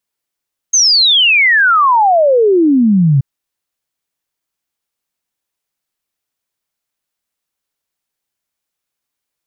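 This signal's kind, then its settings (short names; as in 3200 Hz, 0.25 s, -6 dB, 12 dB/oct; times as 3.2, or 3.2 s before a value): log sweep 6500 Hz -> 130 Hz 2.48 s -6.5 dBFS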